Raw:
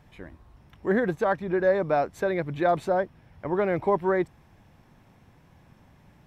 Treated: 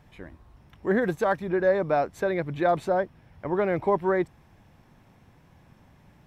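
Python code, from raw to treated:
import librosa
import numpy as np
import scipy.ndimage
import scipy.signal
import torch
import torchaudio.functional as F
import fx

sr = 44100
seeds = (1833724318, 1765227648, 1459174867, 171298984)

y = fx.high_shelf(x, sr, hz=fx.line((1.01, 4200.0), (1.47, 6500.0)), db=8.5, at=(1.01, 1.47), fade=0.02)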